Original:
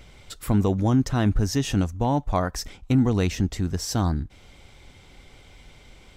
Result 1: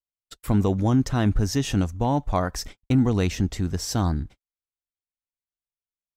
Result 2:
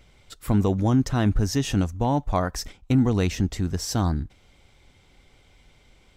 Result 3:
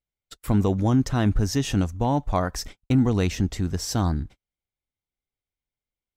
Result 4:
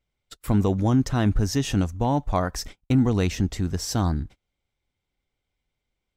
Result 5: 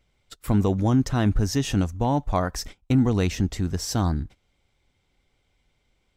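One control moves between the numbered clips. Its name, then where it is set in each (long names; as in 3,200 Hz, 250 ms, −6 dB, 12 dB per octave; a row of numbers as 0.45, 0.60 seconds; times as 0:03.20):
noise gate, range: −60, −7, −45, −32, −20 decibels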